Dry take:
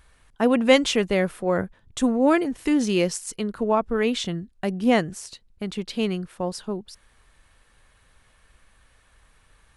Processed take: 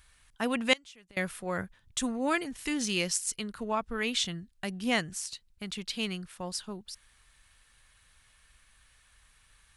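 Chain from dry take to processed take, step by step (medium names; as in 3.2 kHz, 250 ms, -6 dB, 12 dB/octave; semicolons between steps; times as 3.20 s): amplifier tone stack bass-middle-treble 5-5-5; 0.73–1.17 s: inverted gate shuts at -31 dBFS, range -26 dB; trim +7.5 dB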